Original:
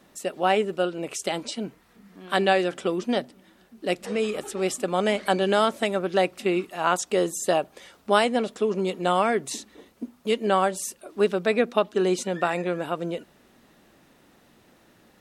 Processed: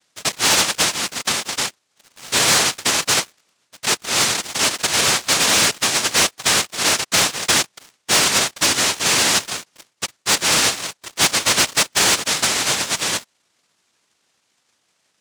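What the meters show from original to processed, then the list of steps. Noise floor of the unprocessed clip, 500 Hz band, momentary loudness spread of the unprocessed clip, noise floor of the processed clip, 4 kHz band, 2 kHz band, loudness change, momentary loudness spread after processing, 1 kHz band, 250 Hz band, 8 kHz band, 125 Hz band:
-59 dBFS, -5.5 dB, 12 LU, -68 dBFS, +17.0 dB, +11.0 dB, +8.5 dB, 10 LU, +2.0 dB, -3.0 dB, +20.0 dB, +2.5 dB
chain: noise-vocoded speech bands 1; waveshaping leveller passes 3; trim -3.5 dB

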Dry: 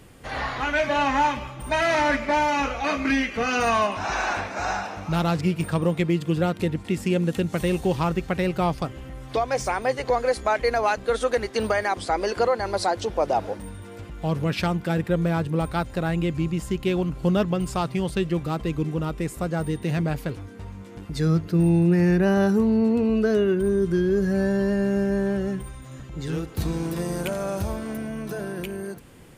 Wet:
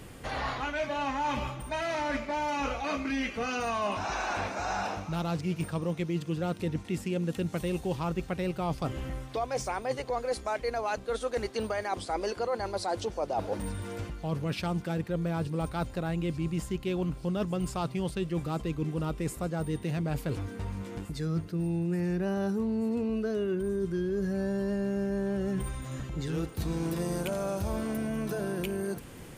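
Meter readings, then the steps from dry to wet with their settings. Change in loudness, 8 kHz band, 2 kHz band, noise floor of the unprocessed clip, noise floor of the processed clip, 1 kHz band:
-8.0 dB, -5.5 dB, -9.5 dB, -41 dBFS, -45 dBFS, -8.0 dB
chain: reverse; compression 6:1, threshold -31 dBFS, peak gain reduction 14.5 dB; reverse; dynamic bell 1.8 kHz, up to -4 dB, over -49 dBFS, Q 2.2; feedback echo behind a high-pass 882 ms, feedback 78%, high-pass 5.2 kHz, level -15 dB; trim +2.5 dB

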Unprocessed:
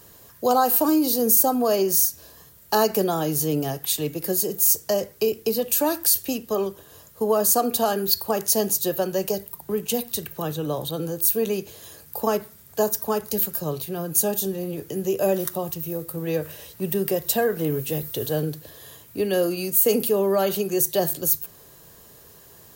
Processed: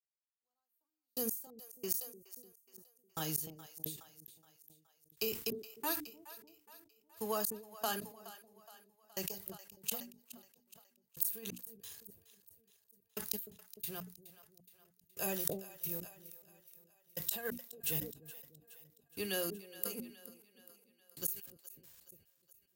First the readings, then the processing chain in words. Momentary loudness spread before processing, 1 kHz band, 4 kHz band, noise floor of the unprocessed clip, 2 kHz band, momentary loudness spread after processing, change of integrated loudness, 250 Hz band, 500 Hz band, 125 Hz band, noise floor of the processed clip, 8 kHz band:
11 LU, -21.5 dB, -15.5 dB, -50 dBFS, -13.0 dB, 22 LU, -17.0 dB, -22.0 dB, -23.0 dB, -20.5 dB, -82 dBFS, -18.5 dB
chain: dynamic bell 5.6 kHz, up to -4 dB, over -39 dBFS, Q 1.7; crossover distortion -50 dBFS; amplifier tone stack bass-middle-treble 5-5-5; band-stop 590 Hz, Q 12; trance gate ".......xx..x" 90 bpm -60 dB; hum notches 60/120/180/240/300 Hz; inverted gate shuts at -21 dBFS, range -30 dB; on a send: two-band feedback delay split 520 Hz, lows 300 ms, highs 420 ms, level -16 dB; on the sum: decay stretcher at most 110 dB/s; trim +3 dB

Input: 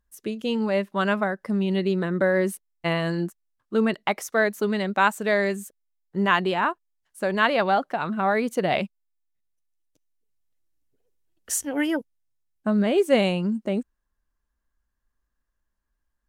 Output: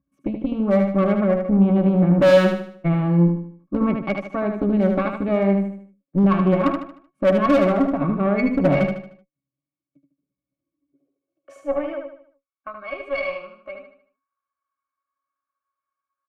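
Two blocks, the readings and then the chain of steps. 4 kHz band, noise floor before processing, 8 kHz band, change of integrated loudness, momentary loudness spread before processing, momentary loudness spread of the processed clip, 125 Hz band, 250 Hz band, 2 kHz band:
-5.5 dB, -79 dBFS, under -15 dB, +4.5 dB, 9 LU, 16 LU, +9.5 dB, +6.5 dB, -4.5 dB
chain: tone controls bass +6 dB, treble -10 dB; in parallel at +2 dB: peak limiter -15 dBFS, peak gain reduction 8 dB; on the sum: high-pass sweep 210 Hz -> 1.2 kHz, 10.53–12.28 s; pitch-class resonator C#, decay 0.13 s; Chebyshev shaper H 8 -23 dB, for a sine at -9.5 dBFS; hard clipper -17 dBFS, distortion -15 dB; on a send: feedback delay 76 ms, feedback 40%, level -5.5 dB; on the sum: trim +6.5 dB

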